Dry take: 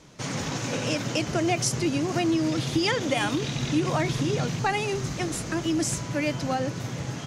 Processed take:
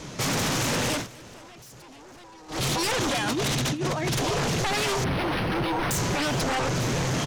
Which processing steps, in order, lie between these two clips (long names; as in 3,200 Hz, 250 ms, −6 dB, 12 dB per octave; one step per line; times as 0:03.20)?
0:03.18–0:04.19: compressor whose output falls as the input rises −31 dBFS, ratio −0.5
brickwall limiter −22.5 dBFS, peak gain reduction 10 dB
sine wavefolder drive 9 dB, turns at −22.5 dBFS
0:00.93–0:02.63: duck −21.5 dB, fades 0.15 s
single-tap delay 464 ms −23.5 dB
0:05.04–0:05.91: linearly interpolated sample-rate reduction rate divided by 6×